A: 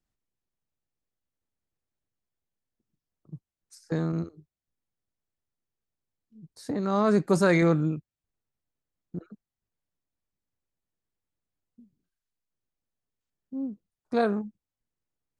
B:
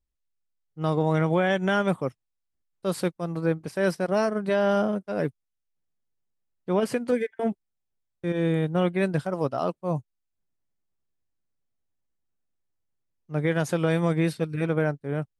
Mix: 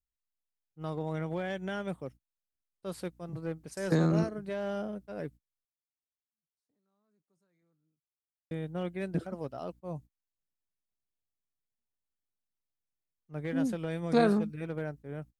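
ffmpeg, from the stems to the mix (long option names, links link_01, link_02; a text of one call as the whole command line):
ffmpeg -i stem1.wav -i stem2.wav -filter_complex "[0:a]aemphasis=mode=production:type=cd,acrossover=split=280[link_01][link_02];[link_02]acompressor=threshold=-25dB:ratio=6[link_03];[link_01][link_03]amix=inputs=2:normalize=0,aeval=exprs='val(0)+0.000562*(sin(2*PI*60*n/s)+sin(2*PI*2*60*n/s)/2+sin(2*PI*3*60*n/s)/3+sin(2*PI*4*60*n/s)/4+sin(2*PI*5*60*n/s)/5)':channel_layout=same,volume=2.5dB[link_04];[1:a]adynamicequalizer=threshold=0.00708:dfrequency=1100:dqfactor=1.9:tfrequency=1100:tqfactor=1.9:attack=5:release=100:ratio=0.375:range=3:mode=cutabove:tftype=bell,aeval=exprs='clip(val(0),-1,0.0944)':channel_layout=same,volume=-11.5dB,asplit=3[link_05][link_06][link_07];[link_05]atrim=end=5.65,asetpts=PTS-STARTPTS,afade=type=out:start_time=5.646:duration=0.004:curve=hsin[link_08];[link_06]atrim=start=5.65:end=8.51,asetpts=PTS-STARTPTS,volume=0[link_09];[link_07]atrim=start=8.51,asetpts=PTS-STARTPTS,afade=type=in:duration=0.004:curve=hsin[link_10];[link_08][link_09][link_10]concat=n=3:v=0:a=1,asplit=2[link_11][link_12];[link_12]apad=whole_len=678807[link_13];[link_04][link_13]sidechaingate=range=-55dB:threshold=-48dB:ratio=16:detection=peak[link_14];[link_14][link_11]amix=inputs=2:normalize=0" out.wav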